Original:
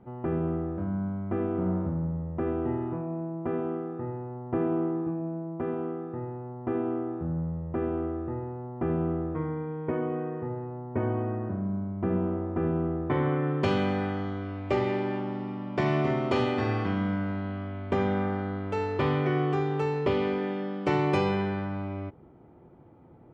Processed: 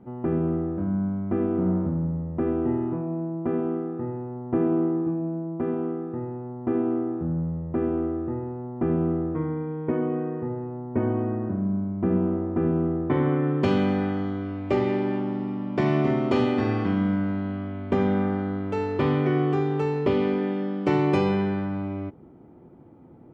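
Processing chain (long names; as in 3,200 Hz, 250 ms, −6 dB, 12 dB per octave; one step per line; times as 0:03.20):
parametric band 250 Hz +7 dB 1.3 octaves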